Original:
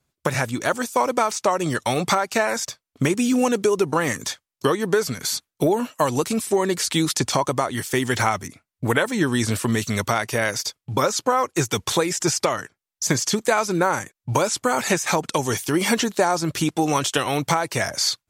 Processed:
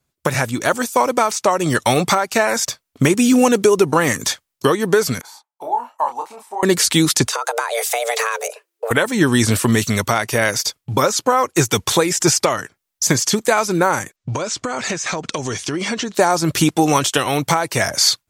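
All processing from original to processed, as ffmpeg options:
-filter_complex "[0:a]asettb=1/sr,asplit=3[s0][s1][s2];[s0]atrim=end=5.214[s3];[s1]atrim=start=5.21:end=6.63,asetpts=PTS-STARTPTS,afade=t=in:d=0.004:c=qsin,afade=t=out:st=1.416:d=0.004:c=qsin,bandpass=f=870:t=q:w=7.5,aemphasis=mode=production:type=bsi,asplit=2[s4][s5];[s5]adelay=29,volume=0.562[s6];[s4][s6]amix=inputs=2:normalize=0,atrim=end_sample=62622[s7];[s2]atrim=start=6.626[s8];[s3][s7]acrossfade=d=0.004:c1=hsin:c2=qsin[s9];[s9][s8]acrossfade=d=0.004:c1=qsin:c2=hsin,asettb=1/sr,asplit=3[s10][s11][s12];[s10]atrim=end=7.274[s13];[s11]atrim=start=7.27:end=8.91,asetpts=PTS-STARTPTS,afade=t=in:d=0.004:c=qsin,afade=t=out:st=1.636:d=0.004:c=qsin,acompressor=threshold=0.0562:ratio=6:attack=3.2:release=140:knee=1:detection=peak,afreqshift=340[s14];[s12]atrim=start=8.906[s15];[s13][s14]acrossfade=d=0.004:c1=hsin:c2=qsin[s16];[s16][s15]acrossfade=d=0.004:c1=qsin:c2=hsin,asettb=1/sr,asplit=3[s17][s18][s19];[s17]atrim=end=14.164[s20];[s18]atrim=start=14.16:end=16.15,asetpts=PTS-STARTPTS,afade=t=in:d=0.004:c=qsin,afade=t=out:st=1.986:d=0.004:c=qsin,lowpass=f=7100:w=0.5412,lowpass=f=7100:w=1.3066,bandreject=f=860:w=8.6,acompressor=threshold=0.0316:ratio=4:attack=3.2:release=140:knee=1:detection=peak[s21];[s19]atrim=start=16.146[s22];[s20][s21]acrossfade=d=0.004:c1=hsin:c2=qsin[s23];[s23][s22]acrossfade=d=0.004:c1=qsin:c2=hsin,highshelf=f=12000:g=5,dynaudnorm=f=110:g=3:m=2.82"

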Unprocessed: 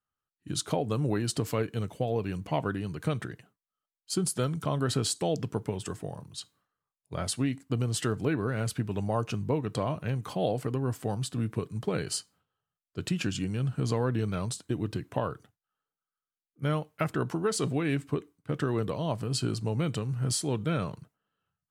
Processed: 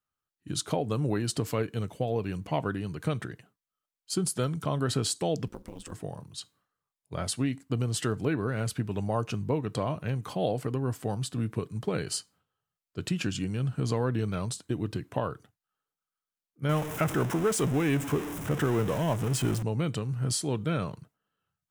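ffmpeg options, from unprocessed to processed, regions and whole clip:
-filter_complex "[0:a]asettb=1/sr,asplit=3[s0][s1][s2];[s0]atrim=end=5.474[s3];[s1]atrim=start=5.47:end=5.92,asetpts=PTS-STARTPTS,afade=t=in:d=0.004:c=qsin,afade=t=out:st=0.446:d=0.004:c=qsin,acompressor=threshold=0.0158:ratio=3:attack=3.2:release=140:knee=1:detection=peak,aeval=exprs='val(0)*sin(2*PI*84*n/s)':c=same,acrusher=bits=7:mode=log:mix=0:aa=0.000001[s4];[s2]atrim=start=5.916[s5];[s3][s4]acrossfade=d=0.004:c1=hsin:c2=qsin[s6];[s6][s5]acrossfade=d=0.004:c1=qsin:c2=hsin,asettb=1/sr,asplit=3[s7][s8][s9];[s7]atrim=end=16.694[s10];[s8]atrim=start=16.69:end=19.63,asetpts=PTS-STARTPTS,afade=t=in:d=0.004:c=qsin,afade=t=out:st=2.936:d=0.004:c=qsin,aeval=exprs='val(0)+0.5*0.0316*sgn(val(0))':c=same,equalizer=f=4400:t=o:w=0.35:g=-13.5[s11];[s9]atrim=start=19.626[s12];[s10][s11]acrossfade=d=0.004:c1=hsin:c2=qsin[s13];[s13][s12]acrossfade=d=0.004:c1=qsin:c2=hsin"

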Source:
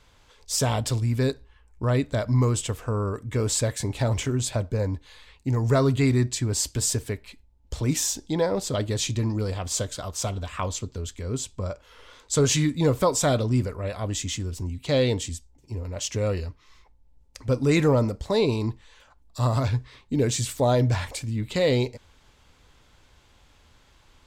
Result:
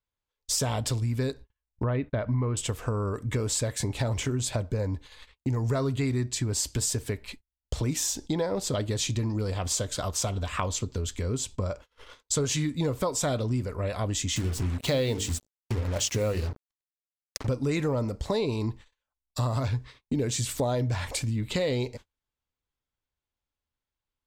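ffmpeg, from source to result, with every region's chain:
-filter_complex "[0:a]asettb=1/sr,asplit=3[s0][s1][s2];[s0]atrim=end=1.834[s3];[s1]atrim=start=1.83:end=2.57,asetpts=PTS-STARTPTS,afade=t=in:d=0.004:c=qsin,afade=t=out:st=0.736:d=0.004:c=qsin,lowpass=f=2900:w=0.5412,lowpass=f=2900:w=1.3066,agate=range=0.0141:threshold=0.00794:ratio=16:release=100:detection=peak[s4];[s2]atrim=start=2.566[s5];[s3][s4]acrossfade=d=0.004:c1=hsin:c2=qsin[s6];[s6][s5]acrossfade=d=0.004:c1=qsin:c2=hsin,asettb=1/sr,asplit=3[s7][s8][s9];[s7]atrim=end=14.364[s10];[s8]atrim=start=14.36:end=17.47,asetpts=PTS-STARTPTS,afade=t=in:d=0.004:c=qsin,afade=t=out:st=3.106:d=0.004:c=qsin,bandreject=f=50:t=h:w=6,bandreject=f=100:t=h:w=6,bandreject=f=150:t=h:w=6,bandreject=f=200:t=h:w=6,bandreject=f=250:t=h:w=6,bandreject=f=300:t=h:w=6,bandreject=f=350:t=h:w=6,bandreject=f=400:t=h:w=6,bandreject=f=450:t=h:w=6,acontrast=40,acrusher=bits=5:mix=0:aa=0.5[s11];[s9]atrim=start=17.466[s12];[s10][s11]acrossfade=d=0.004:c1=hsin:c2=qsin[s13];[s13][s12]acrossfade=d=0.004:c1=qsin:c2=hsin,acompressor=threshold=0.0251:ratio=4,agate=range=0.0112:threshold=0.00447:ratio=16:detection=peak,volume=1.88"

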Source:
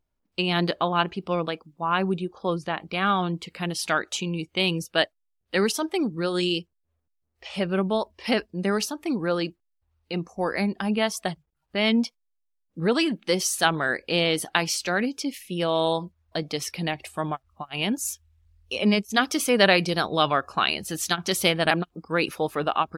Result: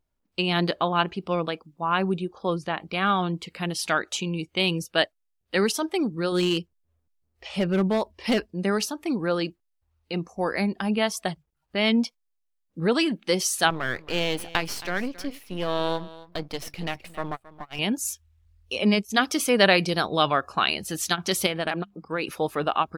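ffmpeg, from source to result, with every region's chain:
-filter_complex "[0:a]asettb=1/sr,asplit=3[s0][s1][s2];[s0]atrim=end=6.324[s3];[s1]atrim=start=6.32:end=8.5,asetpts=PTS-STARTPTS,afade=t=in:d=0.004:c=qsin,afade=t=out:st=2.176:d=0.004:c=qsin,lowshelf=f=370:g=4.5,asoftclip=type=hard:threshold=0.141[s4];[s2]atrim=start=8.496[s5];[s3][s4]acrossfade=d=0.004:c1=hsin:c2=qsin[s6];[s6][s5]acrossfade=d=0.004:c1=qsin:c2=hsin,asettb=1/sr,asplit=3[s7][s8][s9];[s7]atrim=end=13.704[s10];[s8]atrim=start=13.7:end=17.79,asetpts=PTS-STARTPTS,afade=t=in:d=0.004:c=qsin,afade=t=out:st=4.086:d=0.004:c=qsin,aeval=exprs='if(lt(val(0),0),0.251*val(0),val(0))':c=same,equalizer=f=7400:t=o:w=1.3:g=-5.5,aecho=1:1:271:0.126,atrim=end_sample=180369[s11];[s9]atrim=start=17.786[s12];[s10][s11]acrossfade=d=0.004:c1=hsin:c2=qsin[s13];[s13][s12]acrossfade=d=0.004:c1=qsin:c2=hsin,asettb=1/sr,asplit=3[s14][s15][s16];[s14]atrim=end=21.464[s17];[s15]atrim=start=21.46:end=22.29,asetpts=PTS-STARTPTS,afade=t=in:d=0.004:c=qsin,afade=t=out:st=0.826:d=0.004:c=qsin,bass=f=250:g=-3,treble=f=4000:g=-5,acompressor=threshold=0.0631:ratio=2.5:attack=3.2:release=140:knee=1:detection=peak,bandreject=f=50:t=h:w=6,bandreject=f=100:t=h:w=6,bandreject=f=150:t=h:w=6,bandreject=f=200:t=h:w=6[s18];[s16]atrim=start=22.286[s19];[s17][s18]acrossfade=d=0.004:c1=hsin:c2=qsin[s20];[s20][s19]acrossfade=d=0.004:c1=qsin:c2=hsin"

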